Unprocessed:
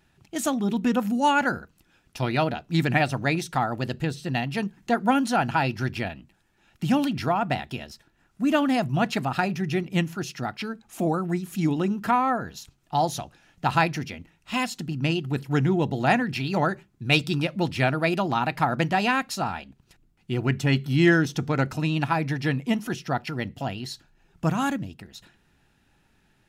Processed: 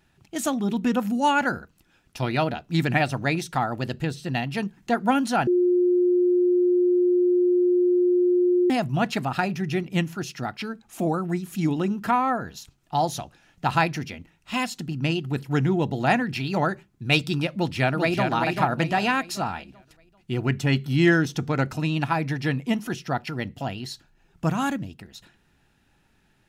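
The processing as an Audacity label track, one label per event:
5.470000	8.700000	bleep 357 Hz -16.5 dBFS
17.520000	18.260000	echo throw 390 ms, feedback 40%, level -4.5 dB

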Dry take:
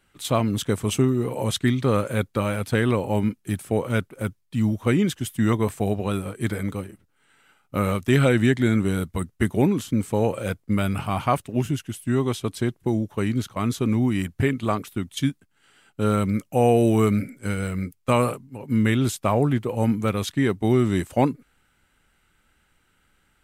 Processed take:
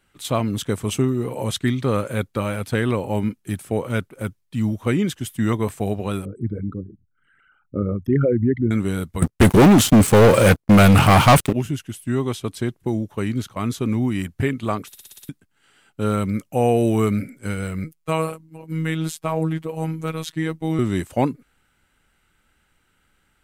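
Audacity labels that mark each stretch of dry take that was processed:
6.250000	8.710000	resonances exaggerated exponent 3
9.220000	11.530000	waveshaping leveller passes 5
14.870000	14.870000	stutter in place 0.06 s, 7 plays
17.840000	20.790000	robot voice 160 Hz

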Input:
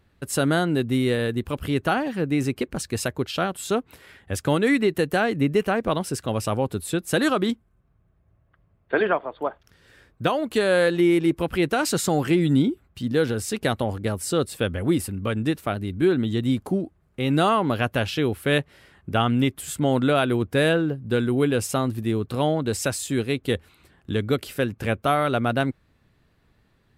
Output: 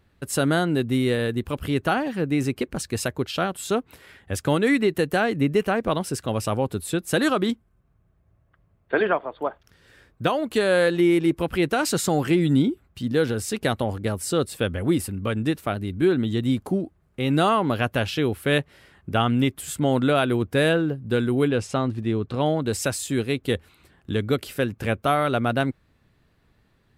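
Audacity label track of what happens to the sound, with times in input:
21.480000	22.460000	distance through air 89 m

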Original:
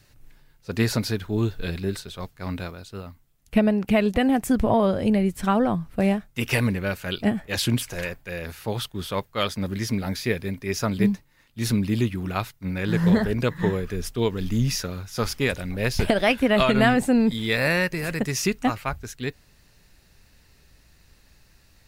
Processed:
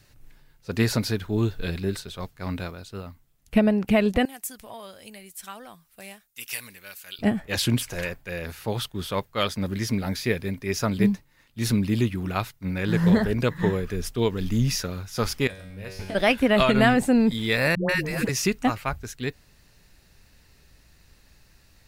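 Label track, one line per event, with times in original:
4.250000	7.190000	pre-emphasis filter coefficient 0.97
15.470000	16.150000	feedback comb 95 Hz, decay 0.82 s, mix 90%
17.750000	18.290000	phase dispersion highs, late by 142 ms, half as late at 500 Hz

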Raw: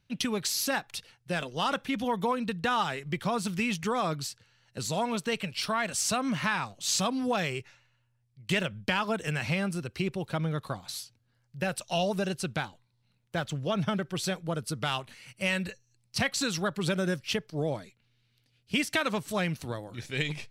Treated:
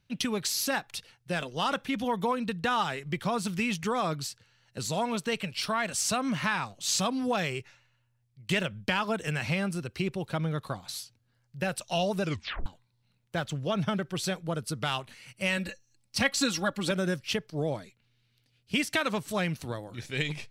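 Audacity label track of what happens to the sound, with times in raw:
12.220000	12.220000	tape stop 0.44 s
15.570000	16.910000	comb 3.6 ms

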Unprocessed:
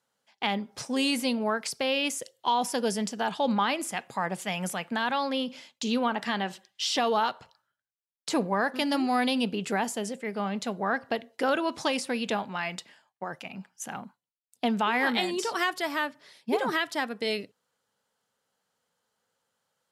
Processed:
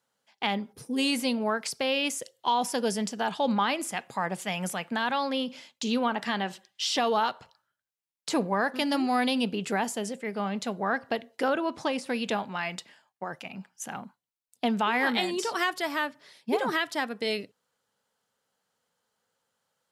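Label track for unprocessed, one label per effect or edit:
0.730000	0.980000	time-frequency box 510–8800 Hz -14 dB
11.480000	12.060000	treble shelf 2.4 kHz -8.5 dB

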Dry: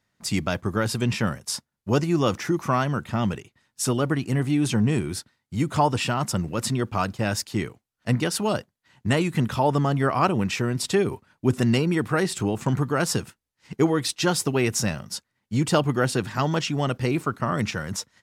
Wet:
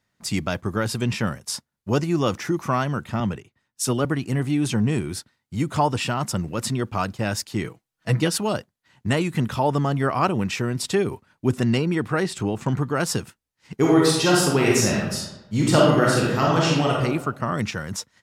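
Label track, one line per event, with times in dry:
3.200000	4.050000	three bands expanded up and down depth 40%
7.640000	8.380000	comb 6.2 ms, depth 78%
11.590000	12.950000	treble shelf 9 kHz -8.5 dB
13.790000	16.930000	reverb throw, RT60 1 s, DRR -4 dB

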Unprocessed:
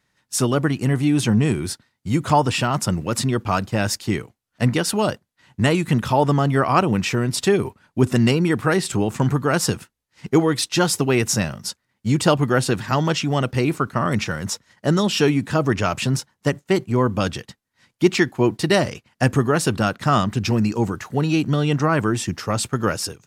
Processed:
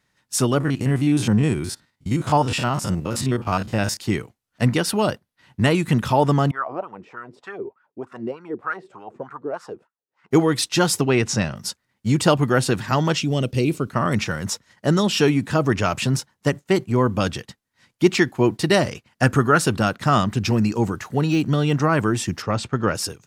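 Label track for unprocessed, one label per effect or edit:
0.600000	3.970000	spectrogram pixelated in time every 50 ms
4.850000	5.760000	peaking EQ 7.2 kHz -5.5 dB 0.41 oct
6.510000	10.310000	wah-wah 3.3 Hz 360–1400 Hz, Q 4.5
11.010000	11.560000	low-pass 5.8 kHz
13.200000	13.900000	high-order bell 1.2 kHz -11 dB
19.230000	19.650000	peaking EQ 1.4 kHz +10.5 dB 0.32 oct
21.260000	21.800000	de-esser amount 75%
22.420000	22.950000	Bessel low-pass 3.8 kHz

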